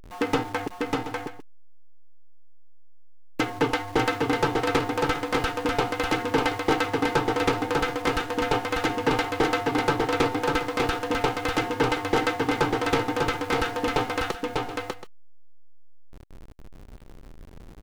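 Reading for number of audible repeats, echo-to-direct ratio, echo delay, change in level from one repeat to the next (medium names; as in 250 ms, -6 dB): 2, -2.5 dB, 596 ms, no regular repeats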